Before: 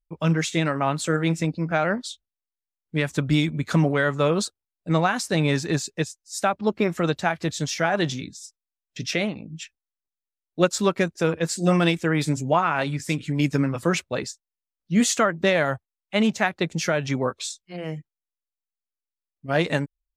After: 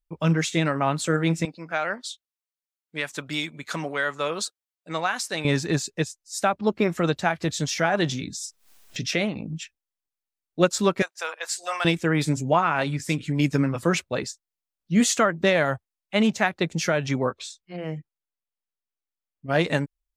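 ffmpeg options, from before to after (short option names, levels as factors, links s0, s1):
-filter_complex "[0:a]asettb=1/sr,asplit=3[s0][s1][s2];[s0]atrim=end=1.454[s3];[s1]atrim=start=1.45:end=5.45,asetpts=PTS-STARTPTS,afade=t=in:d=0.004:c=qsin,afade=t=out:st=3.996:d=0.004:c=qsin,highpass=f=980:p=1[s4];[s2]atrim=start=5.446[s5];[s3][s4]acrossfade=d=0.004:c1=hsin:c2=qsin[s6];[s6][s5]acrossfade=d=0.004:c1=qsin:c2=hsin,asettb=1/sr,asplit=3[s7][s8][s9];[s7]atrim=end=7.444[s10];[s8]atrim=start=7.44:end=9.58,asetpts=PTS-STARTPTS,afade=t=in:d=0.004:c=qsin,afade=t=out:st=2.136:d=0.004:c=qsin,acompressor=mode=upward:threshold=0.0631:ratio=2.5:attack=3.2:release=140:knee=2.83:detection=peak[s11];[s9]atrim=start=9.576[s12];[s10][s11]acrossfade=d=0.004:c1=hsin:c2=qsin[s13];[s13][s12]acrossfade=d=0.004:c1=qsin:c2=hsin,asettb=1/sr,asplit=3[s14][s15][s16];[s14]atrim=end=11.024[s17];[s15]atrim=start=11.02:end=11.85,asetpts=PTS-STARTPTS,afade=t=in:d=0.004:c=qsin,afade=t=out:st=0.826:d=0.004:c=qsin,highpass=f=730:w=0.5412,highpass=f=730:w=1.3066[s18];[s16]atrim=start=11.846[s19];[s17][s18]acrossfade=d=0.004:c1=hsin:c2=qsin[s20];[s20][s19]acrossfade=d=0.004:c1=qsin:c2=hsin,asettb=1/sr,asplit=3[s21][s22][s23];[s21]atrim=end=17.294[s24];[s22]atrim=start=17.29:end=19.5,asetpts=PTS-STARTPTS,afade=t=in:d=0.004:c=qsin,afade=t=out:st=2.206:d=0.004:c=qsin,highshelf=f=4800:g=-11[s25];[s23]atrim=start=19.496[s26];[s24][s25]acrossfade=d=0.004:c1=hsin:c2=qsin[s27];[s27][s26]acrossfade=d=0.004:c1=qsin:c2=hsin"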